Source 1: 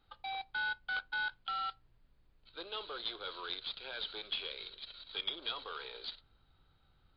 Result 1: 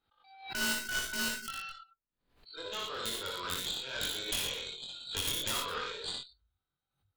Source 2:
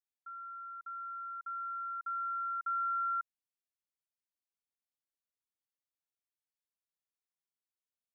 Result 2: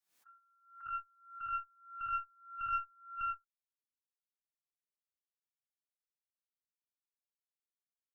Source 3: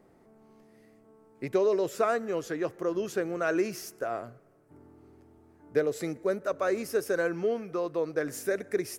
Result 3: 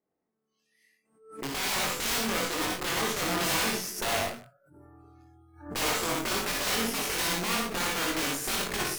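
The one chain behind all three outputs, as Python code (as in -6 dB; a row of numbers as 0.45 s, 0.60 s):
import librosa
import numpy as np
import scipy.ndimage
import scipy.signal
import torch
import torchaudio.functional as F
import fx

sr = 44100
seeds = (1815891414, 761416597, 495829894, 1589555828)

y = np.minimum(x, 2.0 * 10.0 ** (-27.0 / 20.0) - x)
y = fx.low_shelf(y, sr, hz=110.0, db=-10.0)
y = (np.mod(10.0 ** (29.0 / 20.0) * y + 1.0, 2.0) - 1.0) / 10.0 ** (29.0 / 20.0)
y = fx.rider(y, sr, range_db=3, speed_s=2.0)
y = fx.echo_multitap(y, sr, ms=(48, 58, 62, 96, 112, 210), db=(-13.0, -6.5, -5.0, -7.5, -8.5, -18.0))
y = fx.noise_reduce_blind(y, sr, reduce_db=25)
y = fx.cheby_harmonics(y, sr, harmonics=(6, 8), levels_db=(-13, -27), full_scale_db=-20.5)
y = fx.doubler(y, sr, ms=22.0, db=-3)
y = fx.pre_swell(y, sr, db_per_s=110.0)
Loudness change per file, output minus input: +4.5 LU, -3.0 LU, +2.0 LU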